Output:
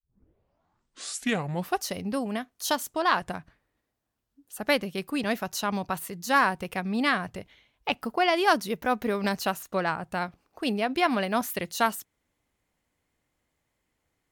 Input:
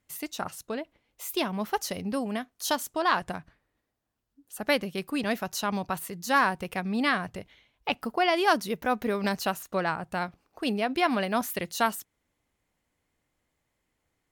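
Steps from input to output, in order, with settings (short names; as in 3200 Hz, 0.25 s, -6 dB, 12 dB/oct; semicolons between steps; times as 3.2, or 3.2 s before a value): tape start at the beginning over 1.89 s; soft clip -10 dBFS, distortion -28 dB; added harmonics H 3 -20 dB, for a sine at -11.5 dBFS; gain +3.5 dB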